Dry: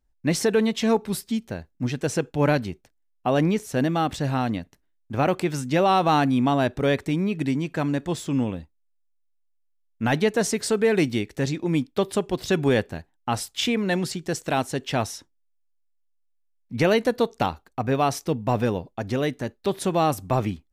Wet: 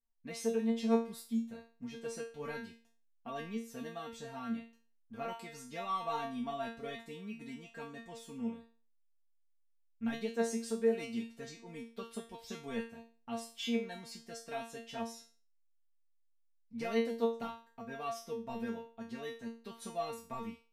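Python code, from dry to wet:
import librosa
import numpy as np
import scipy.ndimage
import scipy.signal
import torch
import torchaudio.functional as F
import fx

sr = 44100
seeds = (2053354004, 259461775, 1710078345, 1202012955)

y = fx.comb_fb(x, sr, f0_hz=230.0, decay_s=0.37, harmonics='all', damping=0.0, mix_pct=100)
y = y * 10.0 ** (-2.0 / 20.0)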